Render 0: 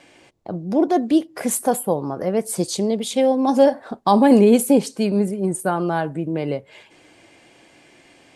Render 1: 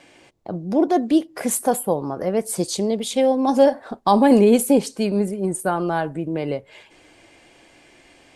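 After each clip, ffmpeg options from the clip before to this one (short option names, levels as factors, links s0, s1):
-af "asubboost=boost=3.5:cutoff=66"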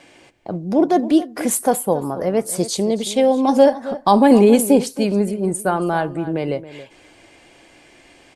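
-filter_complex "[0:a]asplit=2[s0][s1];[s1]adelay=274.1,volume=0.178,highshelf=f=4000:g=-6.17[s2];[s0][s2]amix=inputs=2:normalize=0,volume=1.33"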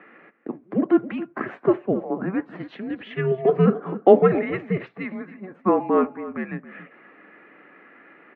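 -af "highpass=f=460:t=q:w=0.5412,highpass=f=460:t=q:w=1.307,lowpass=f=2500:t=q:w=0.5176,lowpass=f=2500:t=q:w=0.7071,lowpass=f=2500:t=q:w=1.932,afreqshift=-380,highpass=f=220:w=0.5412,highpass=f=220:w=1.3066,volume=1.41"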